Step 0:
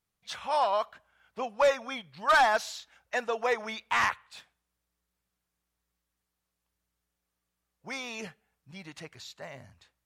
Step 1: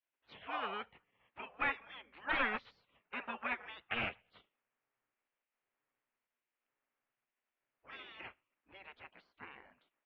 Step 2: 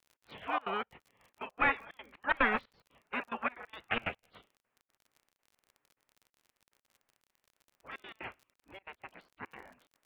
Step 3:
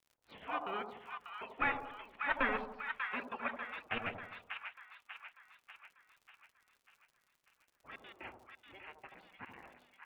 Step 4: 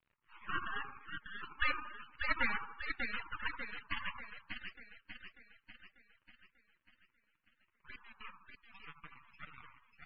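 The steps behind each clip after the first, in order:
steep low-pass 2.7 kHz 36 dB/octave; spectral gate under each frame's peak -15 dB weak; trim +1 dB
trance gate ".x.xxxx.xx.x.xxx" 181 bpm -24 dB; treble shelf 2.9 kHz -8.5 dB; crackle 37 per s -57 dBFS; trim +8.5 dB
flange 0.63 Hz, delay 0.3 ms, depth 7.9 ms, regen -55%; two-band feedback delay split 980 Hz, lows 81 ms, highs 592 ms, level -5 dB; trim -1 dB
mistuned SSB +390 Hz 540–2600 Hz; half-wave rectifier; spectral gate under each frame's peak -20 dB strong; trim +6 dB

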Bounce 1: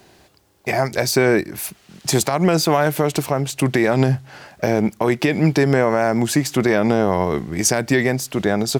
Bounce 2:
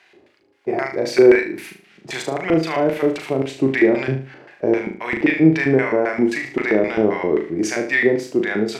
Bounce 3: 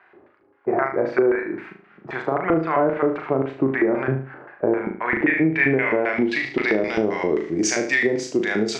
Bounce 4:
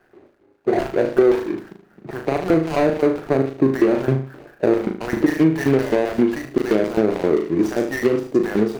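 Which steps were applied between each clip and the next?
LFO band-pass square 3.8 Hz 360–2100 Hz; flutter echo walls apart 6.4 m, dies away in 0.37 s; harmonic-percussive split percussive -5 dB; trim +8 dB
compression 6:1, threshold -16 dBFS, peak gain reduction 10 dB; low-pass sweep 1.3 kHz -> 6.6 kHz, 4.87–7.20 s
median filter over 41 samples; trim +4.5 dB

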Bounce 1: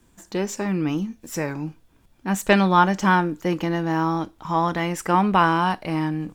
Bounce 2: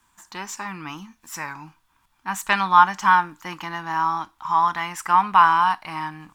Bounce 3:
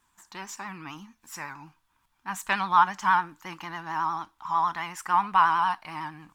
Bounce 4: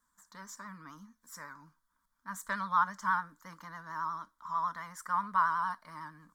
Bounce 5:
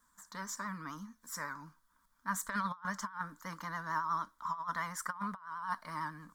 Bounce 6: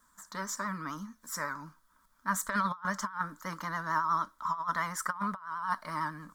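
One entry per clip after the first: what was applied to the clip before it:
resonant low shelf 710 Hz -11.5 dB, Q 3; trim -1 dB
vibrato 11 Hz 63 cents; trim -6 dB
static phaser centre 530 Hz, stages 8; trim -5.5 dB
compressor with a negative ratio -37 dBFS, ratio -0.5; trim +1 dB
small resonant body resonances 370/590/1300 Hz, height 6 dB; trim +4.5 dB

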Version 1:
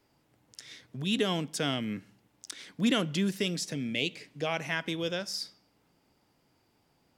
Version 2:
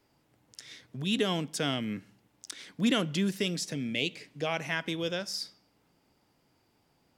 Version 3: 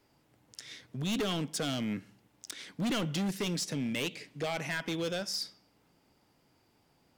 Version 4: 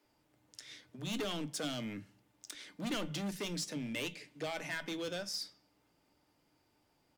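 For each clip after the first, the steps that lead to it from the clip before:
no audible change
hard clipper -29.5 dBFS, distortion -7 dB; trim +1 dB
feedback comb 300 Hz, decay 0.15 s, harmonics all, mix 60%; bands offset in time highs, lows 40 ms, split 180 Hz; trim +1.5 dB

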